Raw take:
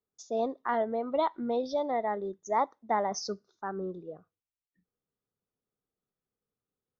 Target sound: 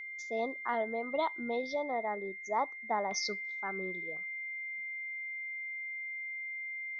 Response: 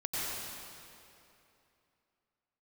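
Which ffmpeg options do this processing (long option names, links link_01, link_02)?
-af "lowshelf=frequency=430:gain=-3,aeval=exprs='val(0)+0.0126*sin(2*PI*2100*n/s)':channel_layout=same,asetnsamples=nb_out_samples=441:pad=0,asendcmd='1.75 equalizer g -3.5;3.11 equalizer g 13',equalizer=frequency=3600:width_type=o:width=0.99:gain=3,volume=-3.5dB"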